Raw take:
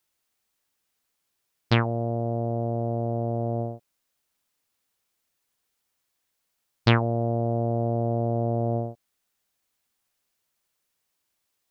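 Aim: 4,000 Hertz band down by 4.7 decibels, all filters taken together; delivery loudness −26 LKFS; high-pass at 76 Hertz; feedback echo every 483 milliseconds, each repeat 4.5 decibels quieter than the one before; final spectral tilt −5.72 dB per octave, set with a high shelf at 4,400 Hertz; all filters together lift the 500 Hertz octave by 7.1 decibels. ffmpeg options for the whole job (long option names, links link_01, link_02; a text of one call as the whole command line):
ffmpeg -i in.wav -af "highpass=76,equalizer=frequency=500:width_type=o:gain=9,equalizer=frequency=4000:width_type=o:gain=-4,highshelf=frequency=4400:gain=-5,aecho=1:1:483|966|1449|1932|2415|2898|3381|3864|4347:0.596|0.357|0.214|0.129|0.0772|0.0463|0.0278|0.0167|0.01,volume=-2.5dB" out.wav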